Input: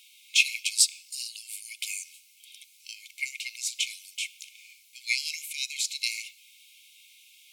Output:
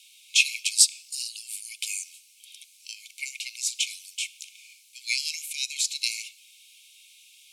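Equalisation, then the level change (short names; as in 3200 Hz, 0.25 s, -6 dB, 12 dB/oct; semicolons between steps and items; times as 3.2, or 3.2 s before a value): steep high-pass 2200 Hz 96 dB/oct; LPF 11000 Hz 12 dB/oct; high shelf 4400 Hz +7 dB; -1.0 dB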